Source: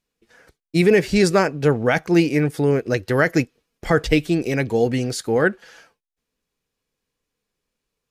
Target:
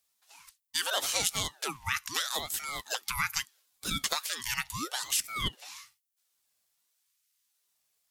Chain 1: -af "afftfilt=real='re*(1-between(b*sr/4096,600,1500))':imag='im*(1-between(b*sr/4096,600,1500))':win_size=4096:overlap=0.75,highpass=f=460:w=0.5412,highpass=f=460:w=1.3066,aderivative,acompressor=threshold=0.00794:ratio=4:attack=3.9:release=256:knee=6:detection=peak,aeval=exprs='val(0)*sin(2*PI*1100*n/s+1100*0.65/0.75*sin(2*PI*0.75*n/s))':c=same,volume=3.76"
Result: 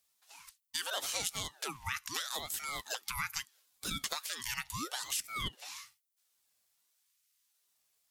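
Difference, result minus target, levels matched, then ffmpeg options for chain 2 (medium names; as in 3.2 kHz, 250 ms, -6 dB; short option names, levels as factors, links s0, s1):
compression: peak gain reduction +7 dB
-af "afftfilt=real='re*(1-between(b*sr/4096,600,1500))':imag='im*(1-between(b*sr/4096,600,1500))':win_size=4096:overlap=0.75,highpass=f=460:w=0.5412,highpass=f=460:w=1.3066,aderivative,acompressor=threshold=0.0224:ratio=4:attack=3.9:release=256:knee=6:detection=peak,aeval=exprs='val(0)*sin(2*PI*1100*n/s+1100*0.65/0.75*sin(2*PI*0.75*n/s))':c=same,volume=3.76"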